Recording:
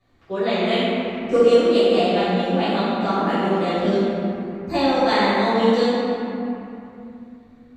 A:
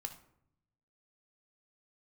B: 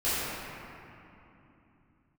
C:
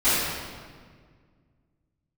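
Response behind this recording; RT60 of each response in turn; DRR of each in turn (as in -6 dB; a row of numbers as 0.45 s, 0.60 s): B; 0.75 s, 3.0 s, 1.8 s; 6.5 dB, -14.5 dB, -19.0 dB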